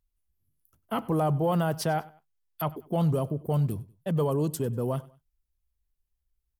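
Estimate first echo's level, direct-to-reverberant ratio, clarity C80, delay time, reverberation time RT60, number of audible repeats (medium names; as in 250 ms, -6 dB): -21.0 dB, no reverb, no reverb, 97 ms, no reverb, 2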